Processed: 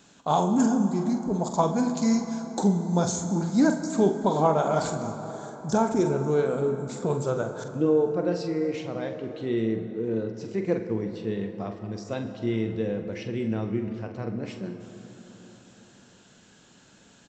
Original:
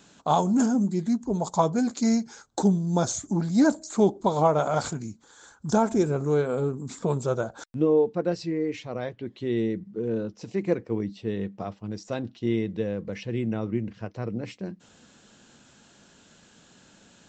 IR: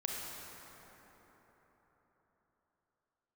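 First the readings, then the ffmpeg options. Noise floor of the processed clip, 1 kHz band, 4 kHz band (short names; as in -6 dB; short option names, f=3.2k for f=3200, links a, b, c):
-56 dBFS, 0.0 dB, -0.5 dB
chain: -filter_complex "[0:a]asplit=2[a][b];[b]adelay=45,volume=-9.5dB[c];[a][c]amix=inputs=2:normalize=0,asplit=2[d][e];[1:a]atrim=start_sample=2205[f];[e][f]afir=irnorm=-1:irlink=0,volume=-5.5dB[g];[d][g]amix=inputs=2:normalize=0,volume=-4.5dB"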